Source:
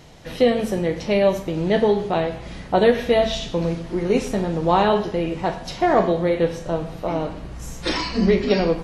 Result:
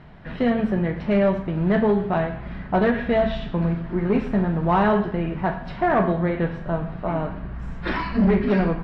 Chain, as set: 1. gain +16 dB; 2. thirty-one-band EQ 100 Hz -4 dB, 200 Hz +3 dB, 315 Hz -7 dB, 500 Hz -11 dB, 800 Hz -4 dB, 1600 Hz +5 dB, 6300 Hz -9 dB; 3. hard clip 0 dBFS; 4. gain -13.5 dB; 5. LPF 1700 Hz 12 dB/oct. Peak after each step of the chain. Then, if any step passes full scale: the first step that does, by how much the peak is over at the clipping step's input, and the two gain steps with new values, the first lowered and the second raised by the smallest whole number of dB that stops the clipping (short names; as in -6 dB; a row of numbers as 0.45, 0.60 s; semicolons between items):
+12.5, +10.0, 0.0, -13.5, -13.0 dBFS; step 1, 10.0 dB; step 1 +6 dB, step 4 -3.5 dB